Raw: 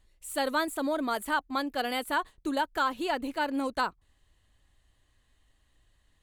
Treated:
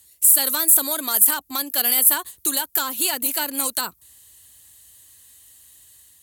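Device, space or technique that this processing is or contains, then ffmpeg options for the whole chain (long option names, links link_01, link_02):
FM broadcast chain: -filter_complex "[0:a]highpass=frequency=63:width=0.5412,highpass=frequency=63:width=1.3066,dynaudnorm=framelen=300:gausssize=3:maxgain=3.5dB,acrossover=split=340|880[link_01][link_02][link_03];[link_01]acompressor=threshold=-40dB:ratio=4[link_04];[link_02]acompressor=threshold=-38dB:ratio=4[link_05];[link_03]acompressor=threshold=-33dB:ratio=4[link_06];[link_04][link_05][link_06]amix=inputs=3:normalize=0,aemphasis=mode=production:type=75fm,alimiter=limit=-19dB:level=0:latency=1:release=32,asoftclip=type=hard:threshold=-23dB,lowpass=frequency=15000:width=0.5412,lowpass=frequency=15000:width=1.3066,aemphasis=mode=production:type=75fm,volume=3dB"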